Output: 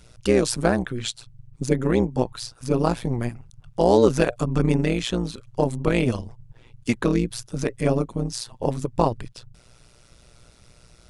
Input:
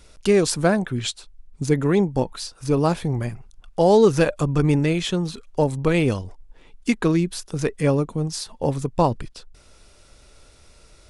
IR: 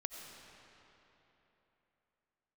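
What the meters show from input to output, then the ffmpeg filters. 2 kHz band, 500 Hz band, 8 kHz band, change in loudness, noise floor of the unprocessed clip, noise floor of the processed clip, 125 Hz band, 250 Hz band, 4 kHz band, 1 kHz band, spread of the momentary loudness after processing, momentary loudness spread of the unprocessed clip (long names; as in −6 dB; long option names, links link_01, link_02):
−2.0 dB, −2.0 dB, −2.0 dB, −2.0 dB, −52 dBFS, −54 dBFS, −2.5 dB, −1.5 dB, −2.0 dB, −1.5 dB, 12 LU, 12 LU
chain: -af "tremolo=f=120:d=0.889,volume=2dB"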